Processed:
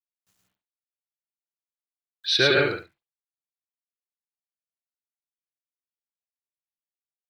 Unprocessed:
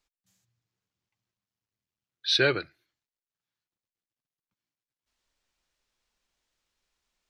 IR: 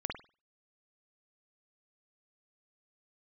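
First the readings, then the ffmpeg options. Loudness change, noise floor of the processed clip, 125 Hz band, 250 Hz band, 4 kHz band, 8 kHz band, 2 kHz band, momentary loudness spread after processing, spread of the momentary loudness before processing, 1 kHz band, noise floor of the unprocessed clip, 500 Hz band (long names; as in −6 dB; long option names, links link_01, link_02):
+4.5 dB, below −85 dBFS, +4.0 dB, +5.0 dB, +4.0 dB, +3.5 dB, +5.0 dB, 15 LU, 12 LU, +5.5 dB, below −85 dBFS, +5.5 dB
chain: -filter_complex "[0:a]acrusher=bits=10:mix=0:aa=0.000001,asplit=2[link_01][link_02];[1:a]atrim=start_sample=2205,atrim=end_sample=6615,adelay=106[link_03];[link_02][link_03]afir=irnorm=-1:irlink=0,volume=-1dB[link_04];[link_01][link_04]amix=inputs=2:normalize=0,volume=1.5dB"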